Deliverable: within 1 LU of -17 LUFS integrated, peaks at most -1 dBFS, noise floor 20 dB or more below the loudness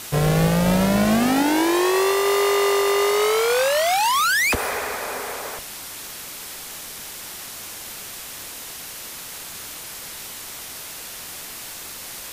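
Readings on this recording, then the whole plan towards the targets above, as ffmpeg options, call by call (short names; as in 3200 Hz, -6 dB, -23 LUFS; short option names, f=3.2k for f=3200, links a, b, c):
noise floor -36 dBFS; noise floor target -40 dBFS; loudness -19.5 LUFS; peak -9.0 dBFS; loudness target -17.0 LUFS
-> -af "afftdn=nr=6:nf=-36"
-af "volume=2.5dB"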